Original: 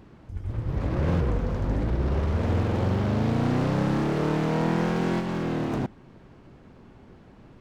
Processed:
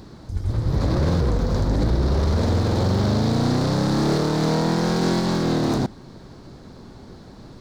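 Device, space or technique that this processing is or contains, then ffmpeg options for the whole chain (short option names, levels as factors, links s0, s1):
over-bright horn tweeter: -af "highshelf=f=3400:t=q:w=3:g=6.5,alimiter=limit=0.0944:level=0:latency=1:release=49,volume=2.51"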